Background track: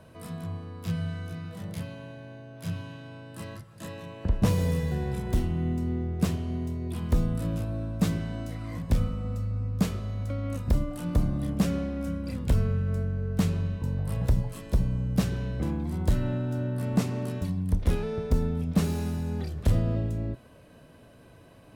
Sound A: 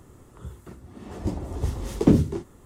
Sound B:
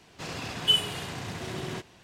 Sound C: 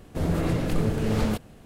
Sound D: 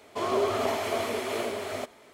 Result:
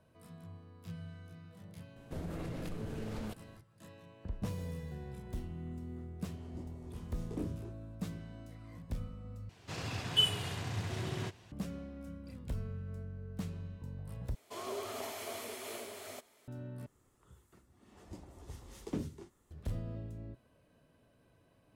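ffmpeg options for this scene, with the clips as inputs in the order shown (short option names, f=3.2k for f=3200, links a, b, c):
-filter_complex "[1:a]asplit=2[a][b];[0:a]volume=-15dB[c];[3:a]acompressor=threshold=-25dB:ratio=6:attack=3.2:release=140:knee=1:detection=peak[d];[a]flanger=delay=22.5:depth=5:speed=2.8[e];[2:a]equalizer=f=100:t=o:w=0.6:g=12[f];[4:a]crystalizer=i=2.5:c=0[g];[b]tiltshelf=f=970:g=-4[h];[c]asplit=4[i][j][k][l];[i]atrim=end=9.494[m];[f]atrim=end=2.03,asetpts=PTS-STARTPTS,volume=-5.5dB[n];[j]atrim=start=11.516:end=14.354[o];[g]atrim=end=2.13,asetpts=PTS-STARTPTS,volume=-15dB[p];[k]atrim=start=16.476:end=16.864[q];[h]atrim=end=2.65,asetpts=PTS-STARTPTS,volume=-17.5dB[r];[l]atrim=start=19.506[s];[d]atrim=end=1.65,asetpts=PTS-STARTPTS,volume=-11dB,afade=t=in:d=0.004:c=hsin,afade=t=out:st=1.646:d=0.004:c=hsin,adelay=1960[t];[e]atrim=end=2.65,asetpts=PTS-STARTPTS,volume=-18dB,afade=t=in:d=0.004:c=hsin,afade=t=out:st=2.646:d=0.004:c=hsin,adelay=5300[u];[m][n]acrossfade=d=0.004:c1=hsin:c2=hsin[v];[v][o]acrossfade=d=0.004:c1=hsin:c2=hsin[w];[w][p]acrossfade=d=0.004:c1=hsin:c2=hsin[x];[x][q]acrossfade=d=0.004:c1=hsin:c2=hsin[y];[y][r]acrossfade=d=0.004:c1=hsin:c2=hsin[z];[z][s]acrossfade=d=0.004:c1=hsin:c2=hsin[aa];[aa][t][u]amix=inputs=3:normalize=0"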